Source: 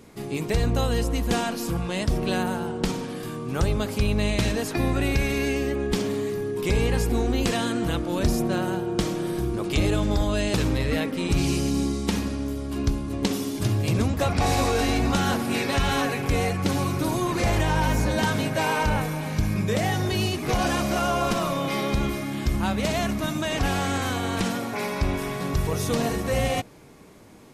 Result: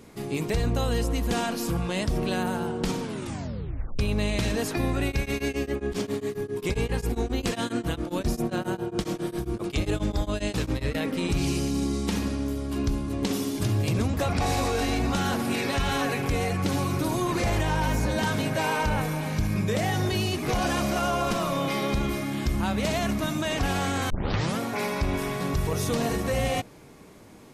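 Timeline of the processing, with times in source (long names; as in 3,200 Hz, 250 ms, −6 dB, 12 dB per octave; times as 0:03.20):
0:03.02: tape stop 0.97 s
0:05.06–0:10.95: tremolo along a rectified sine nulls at 7.4 Hz
0:24.10: tape start 0.50 s
whole clip: brickwall limiter −17.5 dBFS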